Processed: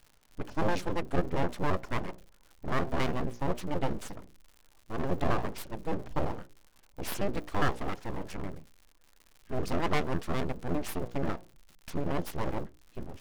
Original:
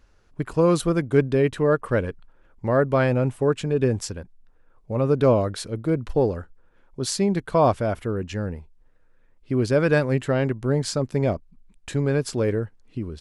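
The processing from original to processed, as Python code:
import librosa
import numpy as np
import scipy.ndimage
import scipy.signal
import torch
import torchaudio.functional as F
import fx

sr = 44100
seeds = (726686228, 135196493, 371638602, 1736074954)

y = fx.pitch_trill(x, sr, semitones=-8.5, every_ms=68)
y = fx.hum_notches(y, sr, base_hz=60, count=9)
y = np.abs(y)
y = fx.dmg_crackle(y, sr, seeds[0], per_s=120.0, level_db=-39.0)
y = y * 10.0 ** (-5.5 / 20.0)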